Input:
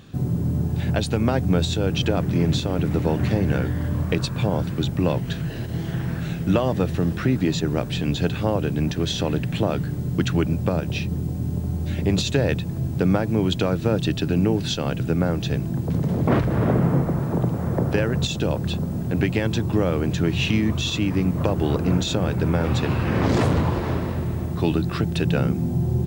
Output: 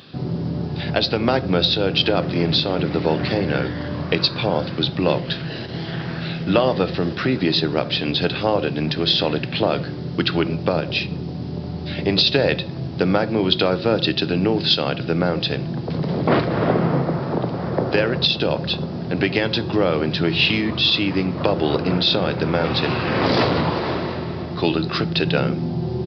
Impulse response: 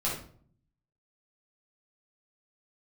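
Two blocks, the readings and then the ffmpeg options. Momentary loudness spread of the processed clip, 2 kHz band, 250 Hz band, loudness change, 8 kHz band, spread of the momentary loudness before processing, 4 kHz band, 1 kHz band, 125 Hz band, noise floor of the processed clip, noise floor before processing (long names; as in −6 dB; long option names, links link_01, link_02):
8 LU, +6.5 dB, +0.5 dB, +2.5 dB, below −10 dB, 5 LU, +10.5 dB, +5.5 dB, −3.0 dB, −29 dBFS, −29 dBFS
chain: -filter_complex "[0:a]bass=frequency=250:gain=-9,treble=frequency=4000:gain=13,aresample=11025,aresample=44100,highpass=89,asplit=2[link_01][link_02];[link_02]aecho=1:1:5.6:0.65[link_03];[1:a]atrim=start_sample=2205[link_04];[link_03][link_04]afir=irnorm=-1:irlink=0,volume=-20dB[link_05];[link_01][link_05]amix=inputs=2:normalize=0,volume=4.5dB"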